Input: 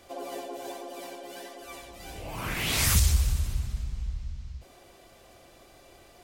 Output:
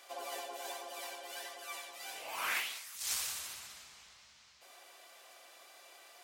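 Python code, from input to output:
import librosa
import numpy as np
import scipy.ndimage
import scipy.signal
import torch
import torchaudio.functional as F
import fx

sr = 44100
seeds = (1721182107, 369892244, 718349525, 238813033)

y = scipy.signal.sosfilt(scipy.signal.butter(2, 910.0, 'highpass', fs=sr, output='sos'), x)
y = fx.over_compress(y, sr, threshold_db=-34.0, ratio=-0.5)
y = y * 10.0 ** (-2.5 / 20.0)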